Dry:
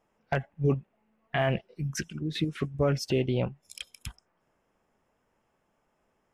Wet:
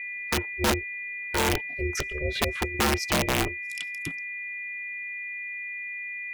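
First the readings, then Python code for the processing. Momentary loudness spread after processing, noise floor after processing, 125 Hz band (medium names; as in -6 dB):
8 LU, -36 dBFS, -3.5 dB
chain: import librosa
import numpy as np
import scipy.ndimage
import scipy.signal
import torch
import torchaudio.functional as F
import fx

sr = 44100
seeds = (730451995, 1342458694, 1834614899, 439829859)

y = x + 10.0 ** (-35.0 / 20.0) * np.sin(2.0 * np.pi * 2200.0 * np.arange(len(x)) / sr)
y = (np.mod(10.0 ** (19.5 / 20.0) * y + 1.0, 2.0) - 1.0) / 10.0 ** (19.5 / 20.0)
y = y * np.sin(2.0 * np.pi * 220.0 * np.arange(len(y)) / sr)
y = y * 10.0 ** (5.5 / 20.0)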